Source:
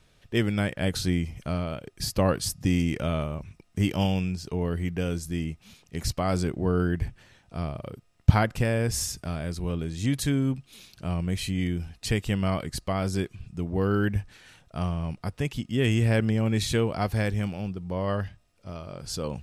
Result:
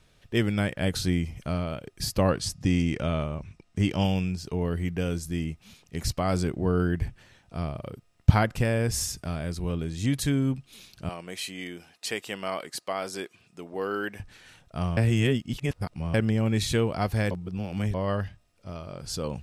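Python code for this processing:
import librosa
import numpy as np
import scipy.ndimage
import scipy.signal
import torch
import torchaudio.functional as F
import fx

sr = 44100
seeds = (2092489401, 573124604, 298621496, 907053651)

y = fx.lowpass(x, sr, hz=8200.0, slope=12, at=(2.29, 4.04))
y = fx.highpass(y, sr, hz=430.0, slope=12, at=(11.09, 14.2))
y = fx.edit(y, sr, fx.reverse_span(start_s=14.97, length_s=1.17),
    fx.reverse_span(start_s=17.31, length_s=0.63), tone=tone)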